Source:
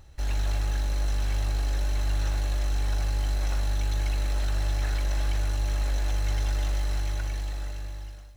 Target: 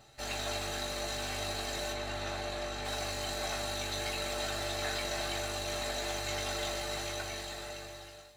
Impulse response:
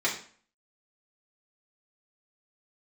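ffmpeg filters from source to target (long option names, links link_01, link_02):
-filter_complex "[0:a]asettb=1/sr,asplit=3[link_01][link_02][link_03];[link_01]atrim=end=1.924[link_04];[link_02]atrim=start=1.92:end=2.85,asetpts=PTS-STARTPTS,afade=type=in:duration=0.004:curve=qsin,afade=type=out:start_time=0.926:duration=0.004:curve=qsin,lowpass=frequency=3200:poles=1[link_05];[link_03]atrim=start=2.846[link_06];[link_04][link_05]acrossfade=duration=0.004:curve1=hsin:curve2=qsin[link_07];[link_07][link_06]acrossfade=duration=0.004:curve1=qsin:curve2=hsin[link_08];[1:a]atrim=start_sample=2205,atrim=end_sample=3528,asetrate=88200,aresample=44100[link_09];[link_08][link_09]afir=irnorm=-1:irlink=0"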